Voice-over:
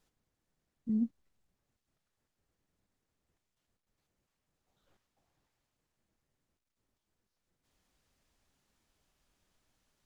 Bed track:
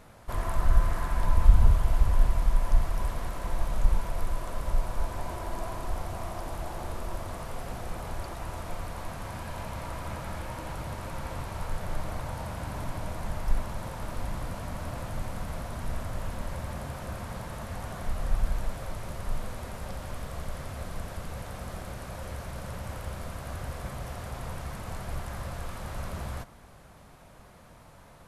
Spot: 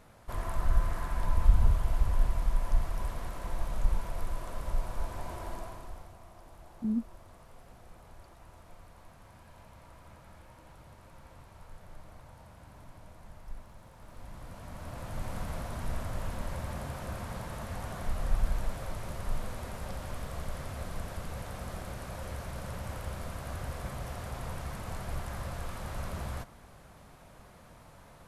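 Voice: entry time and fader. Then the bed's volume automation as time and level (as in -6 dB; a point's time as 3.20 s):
5.95 s, +0.5 dB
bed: 5.50 s -4.5 dB
6.19 s -17 dB
13.91 s -17 dB
15.34 s -1.5 dB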